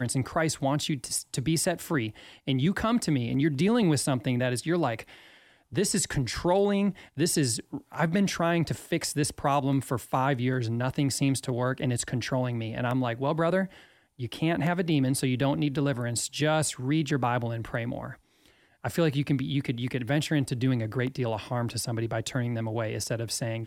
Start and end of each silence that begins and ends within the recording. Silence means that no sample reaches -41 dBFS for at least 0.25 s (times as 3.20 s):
5.20–5.72 s
13.76–14.20 s
18.14–18.84 s